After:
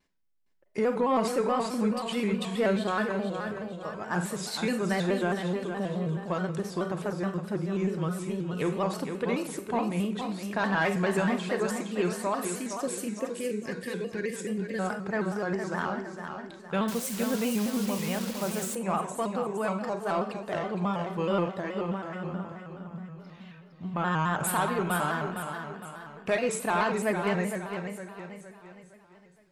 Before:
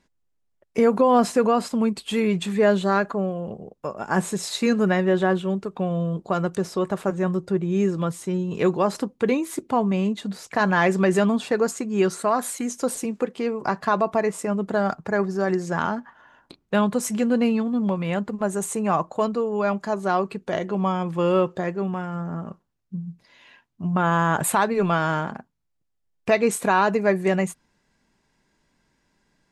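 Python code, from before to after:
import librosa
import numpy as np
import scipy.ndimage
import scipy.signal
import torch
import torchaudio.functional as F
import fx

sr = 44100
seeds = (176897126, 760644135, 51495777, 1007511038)

y = fx.spec_box(x, sr, start_s=12.35, length_s=2.45, low_hz=560.0, high_hz=1500.0, gain_db=-23)
y = fx.rev_schroeder(y, sr, rt60_s=0.5, comb_ms=32, drr_db=7.5)
y = 10.0 ** (-8.0 / 20.0) * np.tanh(y / 10.0 ** (-8.0 / 20.0))
y = fx.peak_eq(y, sr, hz=7800.0, db=-7.5, octaves=2.3)
y = fx.notch(y, sr, hz=6500.0, q=15.0)
y = fx.echo_feedback(y, sr, ms=462, feedback_pct=44, wet_db=-7.5)
y = fx.quant_dither(y, sr, seeds[0], bits=6, dither='none', at=(16.88, 18.75))
y = fx.high_shelf(y, sr, hz=2000.0, db=10.0)
y = fx.vibrato_shape(y, sr, shape='square', rate_hz=4.7, depth_cents=100.0)
y = y * 10.0 ** (-8.5 / 20.0)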